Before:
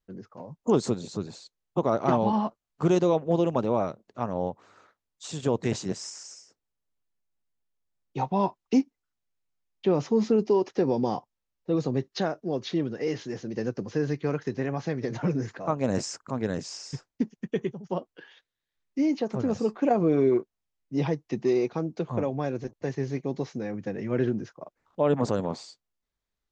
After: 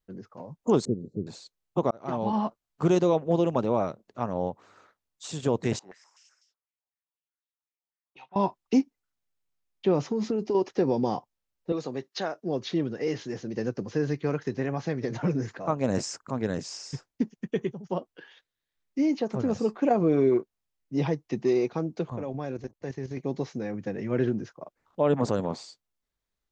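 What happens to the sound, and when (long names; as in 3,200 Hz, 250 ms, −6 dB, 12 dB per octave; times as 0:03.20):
0:00.85–0:01.27: inverse Chebyshev low-pass filter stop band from 920 Hz
0:01.91–0:02.44: fade in
0:05.79–0:08.36: band-pass on a step sequencer 8 Hz 810–3,500 Hz
0:10.02–0:10.55: downward compressor, threshold −23 dBFS
0:11.72–0:12.43: high-pass filter 550 Hz 6 dB per octave
0:22.10–0:23.17: output level in coarse steps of 11 dB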